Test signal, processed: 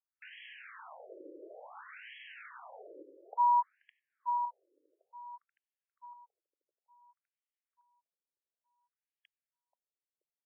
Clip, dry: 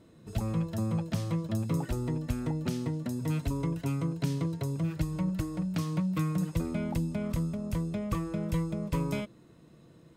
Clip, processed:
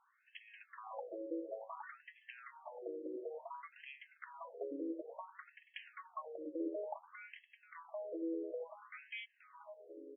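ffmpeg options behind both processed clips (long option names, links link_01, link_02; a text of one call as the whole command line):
ffmpeg -i in.wav -filter_complex "[0:a]asplit=2[link_01][link_02];[link_02]adelay=482,lowpass=frequency=1000:poles=1,volume=-7.5dB,asplit=2[link_03][link_04];[link_04]adelay=482,lowpass=frequency=1000:poles=1,volume=0.54,asplit=2[link_05][link_06];[link_06]adelay=482,lowpass=frequency=1000:poles=1,volume=0.54,asplit=2[link_07][link_08];[link_08]adelay=482,lowpass=frequency=1000:poles=1,volume=0.54,asplit=2[link_09][link_10];[link_10]adelay=482,lowpass=frequency=1000:poles=1,volume=0.54,asplit=2[link_11][link_12];[link_12]adelay=482,lowpass=frequency=1000:poles=1,volume=0.54,asplit=2[link_13][link_14];[link_14]adelay=482,lowpass=frequency=1000:poles=1,volume=0.54[link_15];[link_01][link_03][link_05][link_07][link_09][link_11][link_13][link_15]amix=inputs=8:normalize=0,afftfilt=real='re*between(b*sr/1024,400*pow(2400/400,0.5+0.5*sin(2*PI*0.57*pts/sr))/1.41,400*pow(2400/400,0.5+0.5*sin(2*PI*0.57*pts/sr))*1.41)':imag='im*between(b*sr/1024,400*pow(2400/400,0.5+0.5*sin(2*PI*0.57*pts/sr))/1.41,400*pow(2400/400,0.5+0.5*sin(2*PI*0.57*pts/sr))*1.41)':win_size=1024:overlap=0.75,volume=-1dB" out.wav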